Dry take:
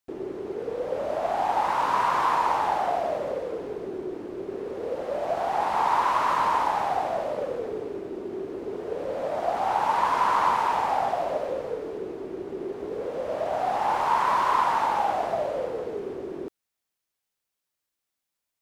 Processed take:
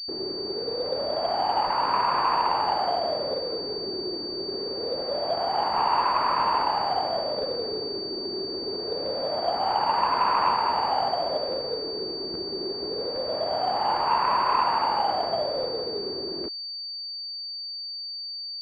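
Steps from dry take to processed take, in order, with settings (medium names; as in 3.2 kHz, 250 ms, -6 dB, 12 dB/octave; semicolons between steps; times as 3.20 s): crackling interface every 0.82 s, samples 512, repeat, from 0.85 s; class-D stage that switches slowly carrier 4.6 kHz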